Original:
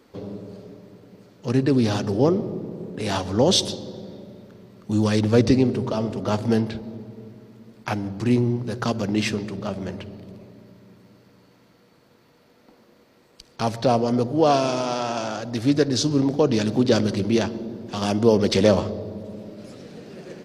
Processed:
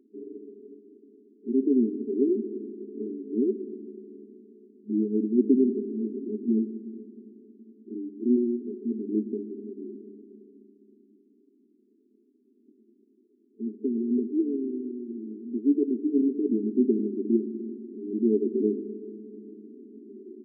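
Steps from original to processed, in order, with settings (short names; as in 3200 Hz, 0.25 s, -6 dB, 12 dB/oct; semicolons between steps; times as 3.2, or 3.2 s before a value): FFT band-pass 210–440 Hz; gain -2 dB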